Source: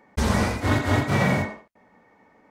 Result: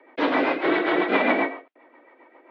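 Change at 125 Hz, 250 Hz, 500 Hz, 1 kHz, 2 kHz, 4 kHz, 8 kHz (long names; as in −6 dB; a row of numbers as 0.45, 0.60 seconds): −24.5 dB, +0.5 dB, +4.5 dB, +2.5 dB, +3.0 dB, 0.0 dB, below −25 dB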